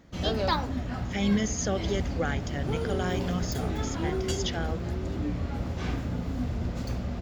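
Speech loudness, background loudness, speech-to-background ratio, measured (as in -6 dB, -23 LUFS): -32.5 LUFS, -32.0 LUFS, -0.5 dB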